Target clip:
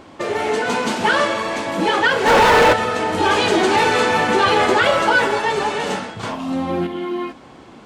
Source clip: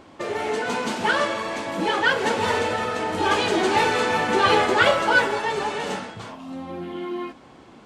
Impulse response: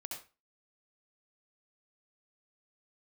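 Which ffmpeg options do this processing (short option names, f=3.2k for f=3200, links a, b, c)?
-filter_complex "[0:a]asplit=3[a][b][c];[a]afade=t=out:st=2.26:d=0.02[d];[b]asplit=2[e][f];[f]highpass=f=720:p=1,volume=34dB,asoftclip=type=tanh:threshold=-8.5dB[g];[e][g]amix=inputs=2:normalize=0,lowpass=f=1.4k:p=1,volume=-6dB,afade=t=in:st=2.26:d=0.02,afade=t=out:st=2.72:d=0.02[h];[c]afade=t=in:st=2.72:d=0.02[i];[d][h][i]amix=inputs=3:normalize=0,asettb=1/sr,asplit=3[j][k][l];[j]atrim=end=6.234[m];[k]atrim=start=6.23:end=6.87,asetpts=PTS-STARTPTS,afade=t=in:d=0.004:c=qsin,afade=t=out:st=0.636:d=0.004:c=qsin,acontrast=62[n];[l]atrim=start=6.866[o];[m][n]acrossfade=d=0.004:c1=hsin:c2=qsin[p];[p][o]acrossfade=d=0.004:c1=qsin:c2=hsin,alimiter=level_in=10.5dB:limit=-1dB:release=50:level=0:latency=1,volume=-5dB"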